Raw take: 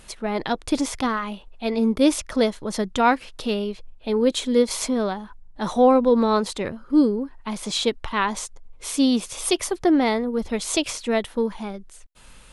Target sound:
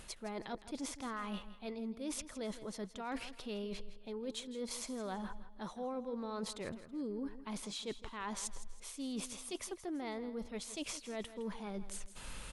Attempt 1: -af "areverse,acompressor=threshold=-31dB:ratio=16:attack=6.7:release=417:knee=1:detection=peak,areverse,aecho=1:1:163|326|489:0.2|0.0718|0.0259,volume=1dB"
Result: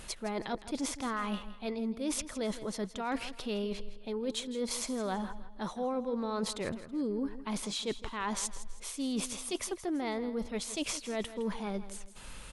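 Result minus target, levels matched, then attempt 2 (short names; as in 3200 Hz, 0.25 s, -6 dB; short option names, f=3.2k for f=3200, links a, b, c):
compressor: peak gain reduction -7 dB
-af "areverse,acompressor=threshold=-38.5dB:ratio=16:attack=6.7:release=417:knee=1:detection=peak,areverse,aecho=1:1:163|326|489:0.2|0.0718|0.0259,volume=1dB"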